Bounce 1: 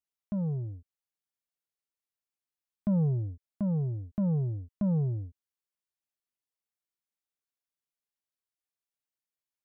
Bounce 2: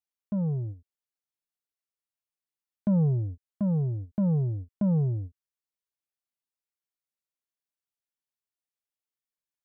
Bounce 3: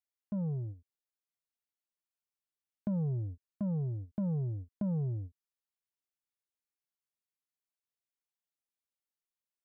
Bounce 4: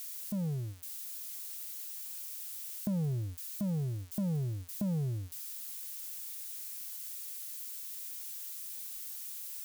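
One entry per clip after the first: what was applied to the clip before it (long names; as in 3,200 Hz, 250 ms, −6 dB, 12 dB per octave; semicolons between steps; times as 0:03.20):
noise gate −39 dBFS, range −7 dB; level +3 dB
downward compressor, threshold −25 dBFS, peak gain reduction 4 dB; level −5.5 dB
spike at every zero crossing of −35.5 dBFS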